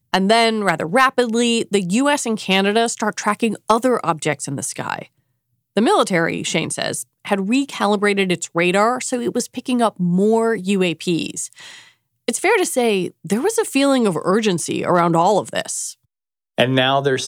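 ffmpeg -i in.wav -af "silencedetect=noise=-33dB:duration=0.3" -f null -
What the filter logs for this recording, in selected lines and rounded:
silence_start: 5.03
silence_end: 5.77 | silence_duration: 0.73
silence_start: 11.80
silence_end: 12.28 | silence_duration: 0.48
silence_start: 15.92
silence_end: 16.58 | silence_duration: 0.66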